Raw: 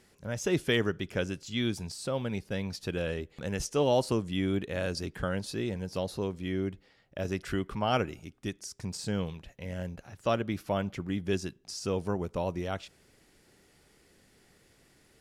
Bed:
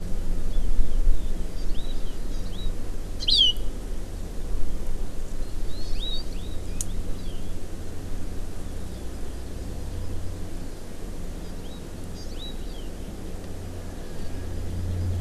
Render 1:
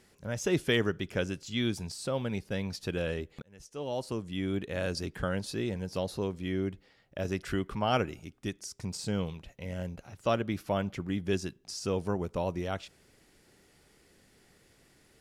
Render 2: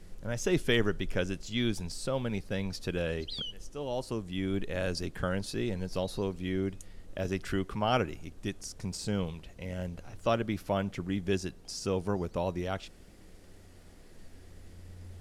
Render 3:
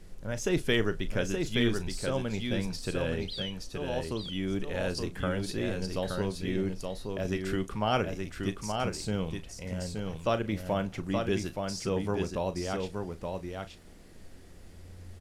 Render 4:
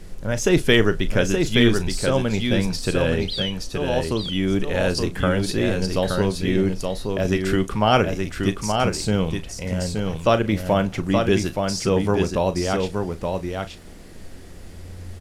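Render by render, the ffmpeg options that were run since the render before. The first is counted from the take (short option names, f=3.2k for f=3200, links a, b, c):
-filter_complex "[0:a]asettb=1/sr,asplit=3[a][b][c];[a]atrim=end=8.664[d];[b]atrim=start=8.66:end=10.28,asetpts=PTS-STARTPTS,afade=t=in:d=0.004:c=qsin,afade=t=out:st=1.616:d=0.004:c=qsin,bandreject=f=1.7k:w=11[e];[c]atrim=start=10.276[f];[d][e]acrossfade=d=0.004:c1=hsin:c2=qsin[g];[g][f]acrossfade=d=0.004:c1=qsin:c2=hsin,asplit=2[h][i];[h]atrim=end=3.42,asetpts=PTS-STARTPTS,afade=t=out:st=3.416:d=0.004:c=hsin[j];[i]atrim=start=3.42,asetpts=PTS-STARTPTS,afade=t=in:d=1.47[k];[j][k]concat=n=2:v=0:a=1"
-filter_complex "[1:a]volume=-20dB[a];[0:a][a]amix=inputs=2:normalize=0"
-filter_complex "[0:a]asplit=2[a][b];[b]adelay=37,volume=-13dB[c];[a][c]amix=inputs=2:normalize=0,aecho=1:1:873:0.596"
-af "volume=10.5dB"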